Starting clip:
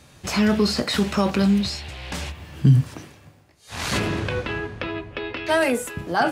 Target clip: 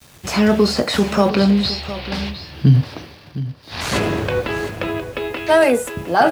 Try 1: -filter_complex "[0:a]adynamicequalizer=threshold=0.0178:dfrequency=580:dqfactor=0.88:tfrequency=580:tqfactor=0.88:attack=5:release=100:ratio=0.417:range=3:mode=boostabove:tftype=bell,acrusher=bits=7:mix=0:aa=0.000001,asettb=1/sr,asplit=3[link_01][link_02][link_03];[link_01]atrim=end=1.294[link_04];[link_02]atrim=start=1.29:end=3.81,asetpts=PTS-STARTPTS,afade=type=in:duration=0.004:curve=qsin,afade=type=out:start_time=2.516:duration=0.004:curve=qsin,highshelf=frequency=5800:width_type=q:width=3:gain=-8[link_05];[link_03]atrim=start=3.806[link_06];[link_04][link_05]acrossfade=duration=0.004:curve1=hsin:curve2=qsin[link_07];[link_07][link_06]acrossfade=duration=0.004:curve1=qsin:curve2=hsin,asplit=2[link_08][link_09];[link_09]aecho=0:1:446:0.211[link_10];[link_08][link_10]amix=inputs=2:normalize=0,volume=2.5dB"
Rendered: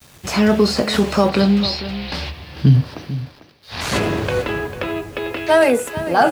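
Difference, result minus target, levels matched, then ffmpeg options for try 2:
echo 264 ms early
-filter_complex "[0:a]adynamicequalizer=threshold=0.0178:dfrequency=580:dqfactor=0.88:tfrequency=580:tqfactor=0.88:attack=5:release=100:ratio=0.417:range=3:mode=boostabove:tftype=bell,acrusher=bits=7:mix=0:aa=0.000001,asettb=1/sr,asplit=3[link_01][link_02][link_03];[link_01]atrim=end=1.294[link_04];[link_02]atrim=start=1.29:end=3.81,asetpts=PTS-STARTPTS,afade=type=in:duration=0.004:curve=qsin,afade=type=out:start_time=2.516:duration=0.004:curve=qsin,highshelf=frequency=5800:width_type=q:width=3:gain=-8[link_05];[link_03]atrim=start=3.806[link_06];[link_04][link_05]acrossfade=duration=0.004:curve1=hsin:curve2=qsin[link_07];[link_07][link_06]acrossfade=duration=0.004:curve1=qsin:curve2=hsin,asplit=2[link_08][link_09];[link_09]aecho=0:1:710:0.211[link_10];[link_08][link_10]amix=inputs=2:normalize=0,volume=2.5dB"

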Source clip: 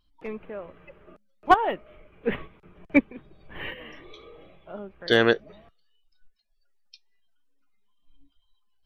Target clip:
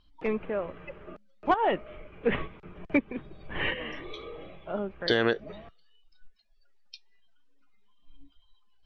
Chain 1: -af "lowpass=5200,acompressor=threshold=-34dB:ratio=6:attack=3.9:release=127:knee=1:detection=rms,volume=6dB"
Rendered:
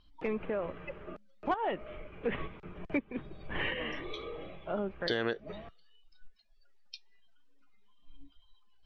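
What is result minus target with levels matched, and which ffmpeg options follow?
downward compressor: peak gain reduction +7.5 dB
-af "lowpass=5200,acompressor=threshold=-25dB:ratio=6:attack=3.9:release=127:knee=1:detection=rms,volume=6dB"

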